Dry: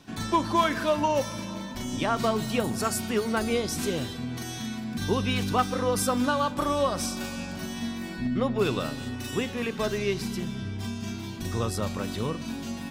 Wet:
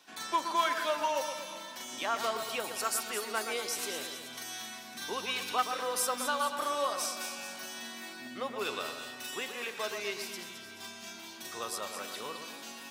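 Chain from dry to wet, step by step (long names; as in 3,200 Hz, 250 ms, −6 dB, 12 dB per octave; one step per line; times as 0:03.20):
Bessel high-pass filter 790 Hz, order 2
high-shelf EQ 12,000 Hz +5 dB
on a send: echo with a time of its own for lows and highs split 2,600 Hz, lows 121 ms, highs 215 ms, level −8 dB
on the sum: level −3 dB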